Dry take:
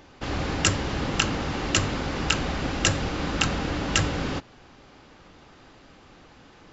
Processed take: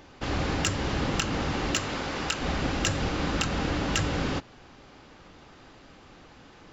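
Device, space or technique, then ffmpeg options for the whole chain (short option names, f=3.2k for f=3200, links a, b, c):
limiter into clipper: -filter_complex "[0:a]asettb=1/sr,asplit=3[a][b][c];[a]atrim=end=1.764[d];[b]atrim=start=1.76:end=2.42,asetpts=PTS-STARTPTS,afade=t=in:d=0.004:c=qsin,afade=t=out:st=0.656:d=0.004:c=qsin,lowshelf=f=250:g=-9[e];[c]atrim=start=2.416[f];[d][e]acrossfade=d=0.004:c1=hsin:c2=qsin[g];[g][f]acrossfade=d=0.004:c1=qsin:c2=hsin,alimiter=limit=-11dB:level=0:latency=1:release=171,asoftclip=type=hard:threshold=-13.5dB"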